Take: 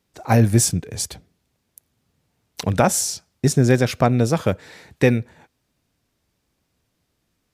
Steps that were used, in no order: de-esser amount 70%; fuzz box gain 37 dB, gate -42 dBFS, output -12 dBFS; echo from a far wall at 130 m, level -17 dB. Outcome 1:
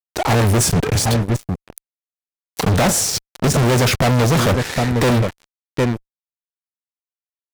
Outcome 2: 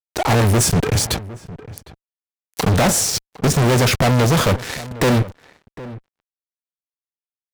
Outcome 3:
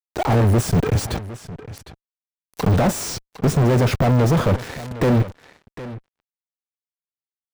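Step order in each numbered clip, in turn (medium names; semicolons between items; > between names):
echo from a far wall > de-esser > fuzz box; de-esser > fuzz box > echo from a far wall; fuzz box > echo from a far wall > de-esser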